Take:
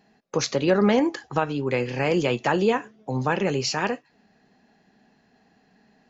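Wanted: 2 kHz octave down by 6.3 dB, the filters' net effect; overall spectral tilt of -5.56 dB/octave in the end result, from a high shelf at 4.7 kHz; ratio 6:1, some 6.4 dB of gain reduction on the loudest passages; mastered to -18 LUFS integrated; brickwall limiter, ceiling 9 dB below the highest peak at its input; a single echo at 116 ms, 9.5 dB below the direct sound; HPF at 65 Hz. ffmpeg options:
-af "highpass=65,equalizer=f=2000:t=o:g=-7.5,highshelf=f=4700:g=-4.5,acompressor=threshold=0.0794:ratio=6,alimiter=limit=0.0794:level=0:latency=1,aecho=1:1:116:0.335,volume=4.73"

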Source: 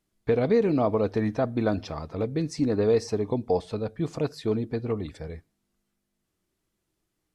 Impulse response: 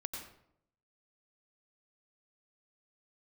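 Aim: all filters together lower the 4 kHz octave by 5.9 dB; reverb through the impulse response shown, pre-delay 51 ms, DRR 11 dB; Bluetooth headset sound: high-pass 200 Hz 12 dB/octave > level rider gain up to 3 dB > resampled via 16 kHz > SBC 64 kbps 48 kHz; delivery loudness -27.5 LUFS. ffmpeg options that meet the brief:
-filter_complex "[0:a]equalizer=f=4000:t=o:g=-7.5,asplit=2[s0][s1];[1:a]atrim=start_sample=2205,adelay=51[s2];[s1][s2]afir=irnorm=-1:irlink=0,volume=0.299[s3];[s0][s3]amix=inputs=2:normalize=0,highpass=200,dynaudnorm=m=1.41,aresample=16000,aresample=44100" -ar 48000 -c:a sbc -b:a 64k

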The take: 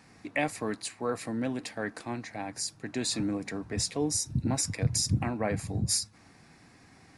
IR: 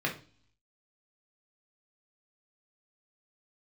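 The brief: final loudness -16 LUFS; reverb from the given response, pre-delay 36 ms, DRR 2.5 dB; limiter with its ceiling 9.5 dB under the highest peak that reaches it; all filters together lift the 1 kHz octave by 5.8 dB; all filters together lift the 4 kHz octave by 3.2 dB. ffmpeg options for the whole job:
-filter_complex "[0:a]equalizer=f=1000:t=o:g=8,equalizer=f=4000:t=o:g=4,alimiter=limit=0.0841:level=0:latency=1,asplit=2[s0][s1];[1:a]atrim=start_sample=2205,adelay=36[s2];[s1][s2]afir=irnorm=-1:irlink=0,volume=0.299[s3];[s0][s3]amix=inputs=2:normalize=0,volume=5.31"

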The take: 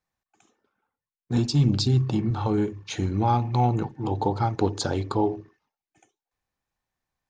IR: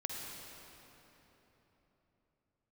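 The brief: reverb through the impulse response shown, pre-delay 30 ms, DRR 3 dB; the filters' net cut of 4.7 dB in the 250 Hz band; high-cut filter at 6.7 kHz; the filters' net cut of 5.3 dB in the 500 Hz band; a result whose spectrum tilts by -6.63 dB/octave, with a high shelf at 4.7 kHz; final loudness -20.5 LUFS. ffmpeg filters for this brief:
-filter_complex "[0:a]lowpass=6700,equalizer=f=250:t=o:g=-5,equalizer=f=500:t=o:g=-5,highshelf=f=4700:g=-4,asplit=2[s0][s1];[1:a]atrim=start_sample=2205,adelay=30[s2];[s1][s2]afir=irnorm=-1:irlink=0,volume=0.631[s3];[s0][s3]amix=inputs=2:normalize=0,volume=1.78"

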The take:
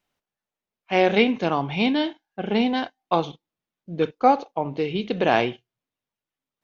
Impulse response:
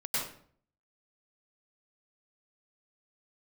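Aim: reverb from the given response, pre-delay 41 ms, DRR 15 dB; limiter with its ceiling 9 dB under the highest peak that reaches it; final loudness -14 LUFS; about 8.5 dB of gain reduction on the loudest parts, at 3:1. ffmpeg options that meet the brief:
-filter_complex "[0:a]acompressor=threshold=0.0794:ratio=3,alimiter=limit=0.112:level=0:latency=1,asplit=2[s0][s1];[1:a]atrim=start_sample=2205,adelay=41[s2];[s1][s2]afir=irnorm=-1:irlink=0,volume=0.0891[s3];[s0][s3]amix=inputs=2:normalize=0,volume=7.08"

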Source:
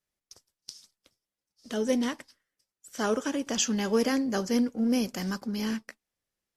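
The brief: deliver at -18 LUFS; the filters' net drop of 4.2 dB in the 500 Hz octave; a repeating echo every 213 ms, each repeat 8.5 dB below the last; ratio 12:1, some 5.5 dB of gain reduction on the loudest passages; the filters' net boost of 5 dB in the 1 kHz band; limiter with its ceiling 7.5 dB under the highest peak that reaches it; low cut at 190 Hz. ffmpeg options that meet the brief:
-af "highpass=190,equalizer=f=500:t=o:g=-6.5,equalizer=f=1000:t=o:g=8.5,acompressor=threshold=0.0398:ratio=12,alimiter=level_in=1.12:limit=0.0631:level=0:latency=1,volume=0.891,aecho=1:1:213|426|639|852:0.376|0.143|0.0543|0.0206,volume=7.08"

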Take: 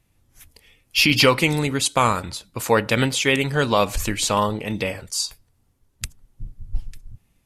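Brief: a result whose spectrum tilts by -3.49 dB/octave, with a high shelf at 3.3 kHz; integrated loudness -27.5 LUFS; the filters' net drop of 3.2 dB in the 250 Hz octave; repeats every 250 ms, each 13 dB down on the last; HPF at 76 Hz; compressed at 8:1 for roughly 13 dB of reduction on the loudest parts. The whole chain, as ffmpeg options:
-af "highpass=76,equalizer=f=250:t=o:g=-4,highshelf=f=3300:g=4.5,acompressor=threshold=0.0631:ratio=8,aecho=1:1:250|500|750:0.224|0.0493|0.0108,volume=1.06"

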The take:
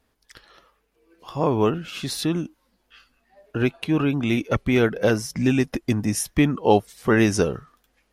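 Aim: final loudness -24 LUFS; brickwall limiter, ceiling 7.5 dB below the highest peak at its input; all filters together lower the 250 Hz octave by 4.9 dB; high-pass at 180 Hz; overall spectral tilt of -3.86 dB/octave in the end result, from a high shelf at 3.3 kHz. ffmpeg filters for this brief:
-af "highpass=180,equalizer=f=250:t=o:g=-5,highshelf=f=3300:g=3,volume=1.33,alimiter=limit=0.316:level=0:latency=1"

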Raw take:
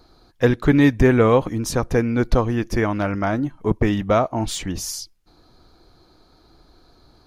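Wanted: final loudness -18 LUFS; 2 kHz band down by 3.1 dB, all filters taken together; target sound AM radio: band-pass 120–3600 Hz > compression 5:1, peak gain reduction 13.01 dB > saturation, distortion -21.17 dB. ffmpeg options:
-af "highpass=120,lowpass=3600,equalizer=f=2000:t=o:g=-3.5,acompressor=threshold=0.0562:ratio=5,asoftclip=threshold=0.133,volume=4.47"

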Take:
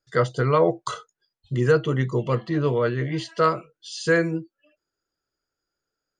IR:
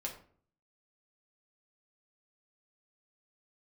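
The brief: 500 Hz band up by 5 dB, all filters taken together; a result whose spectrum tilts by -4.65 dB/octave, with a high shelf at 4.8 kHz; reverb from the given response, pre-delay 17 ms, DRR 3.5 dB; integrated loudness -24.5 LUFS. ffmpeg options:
-filter_complex "[0:a]equalizer=f=500:t=o:g=5.5,highshelf=f=4800:g=-3,asplit=2[s0][s1];[1:a]atrim=start_sample=2205,adelay=17[s2];[s1][s2]afir=irnorm=-1:irlink=0,volume=0.668[s3];[s0][s3]amix=inputs=2:normalize=0,volume=0.473"

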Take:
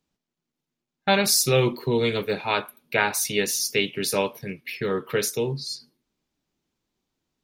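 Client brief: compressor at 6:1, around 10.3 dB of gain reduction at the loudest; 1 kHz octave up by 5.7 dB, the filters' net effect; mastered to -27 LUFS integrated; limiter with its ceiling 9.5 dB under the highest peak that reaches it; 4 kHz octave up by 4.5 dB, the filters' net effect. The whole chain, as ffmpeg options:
-af "equalizer=f=1000:t=o:g=7,equalizer=f=4000:t=o:g=5.5,acompressor=threshold=0.0631:ratio=6,volume=1.41,alimiter=limit=0.158:level=0:latency=1"

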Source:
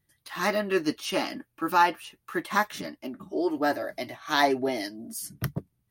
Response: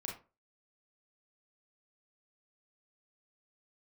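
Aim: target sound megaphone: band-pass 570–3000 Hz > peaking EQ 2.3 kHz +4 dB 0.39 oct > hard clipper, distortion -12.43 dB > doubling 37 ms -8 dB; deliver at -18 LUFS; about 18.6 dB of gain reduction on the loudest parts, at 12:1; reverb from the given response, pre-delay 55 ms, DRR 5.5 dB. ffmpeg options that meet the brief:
-filter_complex "[0:a]acompressor=threshold=0.0178:ratio=12,asplit=2[s0][s1];[1:a]atrim=start_sample=2205,adelay=55[s2];[s1][s2]afir=irnorm=-1:irlink=0,volume=0.562[s3];[s0][s3]amix=inputs=2:normalize=0,highpass=570,lowpass=3000,equalizer=f=2300:t=o:w=0.39:g=4,asoftclip=type=hard:threshold=0.0168,asplit=2[s4][s5];[s5]adelay=37,volume=0.398[s6];[s4][s6]amix=inputs=2:normalize=0,volume=17.8"

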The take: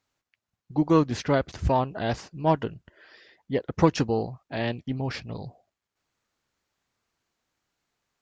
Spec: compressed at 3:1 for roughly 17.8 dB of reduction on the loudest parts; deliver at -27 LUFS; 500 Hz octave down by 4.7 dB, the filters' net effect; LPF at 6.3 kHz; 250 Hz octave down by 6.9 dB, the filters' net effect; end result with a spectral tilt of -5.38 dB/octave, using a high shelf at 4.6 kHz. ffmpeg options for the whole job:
-af "lowpass=6300,equalizer=f=250:t=o:g=-9,equalizer=f=500:t=o:g=-3.5,highshelf=f=4600:g=6,acompressor=threshold=0.00631:ratio=3,volume=7.94"

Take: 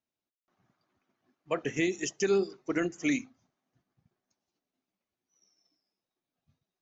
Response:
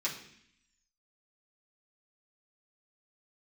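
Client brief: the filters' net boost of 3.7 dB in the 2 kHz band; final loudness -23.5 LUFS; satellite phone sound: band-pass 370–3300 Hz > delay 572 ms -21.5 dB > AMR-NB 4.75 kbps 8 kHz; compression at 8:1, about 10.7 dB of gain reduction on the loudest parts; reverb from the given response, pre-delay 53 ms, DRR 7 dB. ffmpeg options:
-filter_complex "[0:a]equalizer=f=2000:t=o:g=5,acompressor=threshold=0.0224:ratio=8,asplit=2[s0][s1];[1:a]atrim=start_sample=2205,adelay=53[s2];[s1][s2]afir=irnorm=-1:irlink=0,volume=0.266[s3];[s0][s3]amix=inputs=2:normalize=0,highpass=370,lowpass=3300,aecho=1:1:572:0.0841,volume=8.91" -ar 8000 -c:a libopencore_amrnb -b:a 4750

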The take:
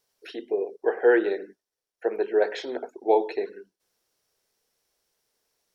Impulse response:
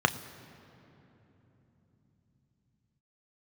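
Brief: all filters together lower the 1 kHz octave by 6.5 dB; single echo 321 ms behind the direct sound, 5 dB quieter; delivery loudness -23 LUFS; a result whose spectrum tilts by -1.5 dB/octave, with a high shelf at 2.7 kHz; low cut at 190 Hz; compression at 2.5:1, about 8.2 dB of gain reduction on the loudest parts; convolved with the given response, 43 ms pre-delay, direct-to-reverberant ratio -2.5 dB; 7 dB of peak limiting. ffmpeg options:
-filter_complex "[0:a]highpass=190,equalizer=f=1000:t=o:g=-9,highshelf=f=2700:g=-4,acompressor=threshold=0.0355:ratio=2.5,alimiter=level_in=1.12:limit=0.0631:level=0:latency=1,volume=0.891,aecho=1:1:321:0.562,asplit=2[s0][s1];[1:a]atrim=start_sample=2205,adelay=43[s2];[s1][s2]afir=irnorm=-1:irlink=0,volume=0.299[s3];[s0][s3]amix=inputs=2:normalize=0,volume=2.66"

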